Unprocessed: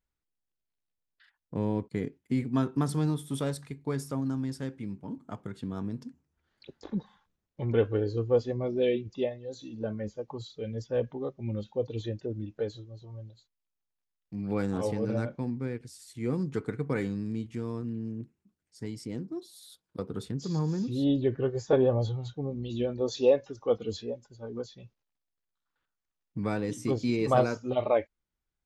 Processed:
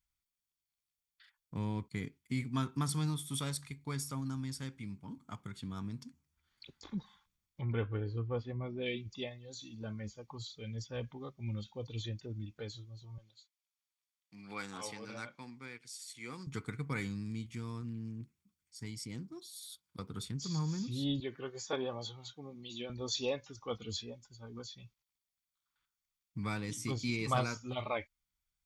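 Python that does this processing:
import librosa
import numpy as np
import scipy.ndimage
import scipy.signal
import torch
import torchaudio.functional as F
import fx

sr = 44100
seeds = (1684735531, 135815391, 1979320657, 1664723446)

y = fx.lowpass(x, sr, hz=2100.0, slope=12, at=(7.61, 8.86))
y = fx.weighting(y, sr, curve='A', at=(13.18, 16.47))
y = fx.highpass(y, sr, hz=290.0, slope=12, at=(21.2, 22.9))
y = fx.tone_stack(y, sr, knobs='5-5-5')
y = y + 0.32 * np.pad(y, (int(0.9 * sr / 1000.0), 0))[:len(y)]
y = y * 10.0 ** (9.0 / 20.0)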